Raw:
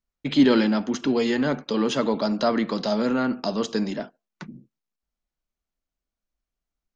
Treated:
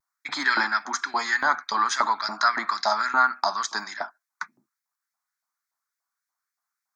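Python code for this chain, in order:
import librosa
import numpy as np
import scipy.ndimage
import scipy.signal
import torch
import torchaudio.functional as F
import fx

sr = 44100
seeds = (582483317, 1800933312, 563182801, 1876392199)

y = fx.fixed_phaser(x, sr, hz=1200.0, stages=4)
y = fx.filter_lfo_highpass(y, sr, shape='saw_up', hz=3.5, low_hz=760.0, high_hz=2200.0, q=1.8)
y = fx.vibrato(y, sr, rate_hz=0.48, depth_cents=22.0)
y = y * 10.0 ** (8.5 / 20.0)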